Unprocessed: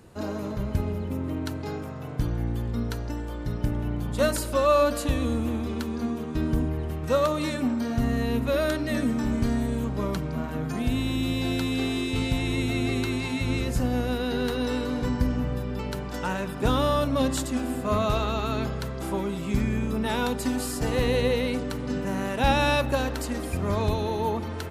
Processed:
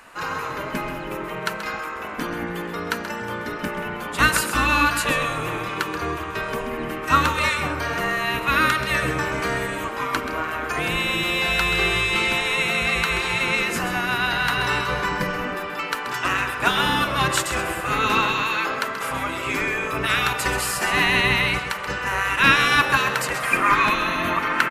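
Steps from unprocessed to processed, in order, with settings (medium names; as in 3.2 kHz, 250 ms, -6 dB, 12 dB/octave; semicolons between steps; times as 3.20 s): spectral gate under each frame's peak -10 dB weak; high-order bell 1.7 kHz +8.5 dB, from 23.42 s +15 dB; delay 131 ms -10 dB; trim +7.5 dB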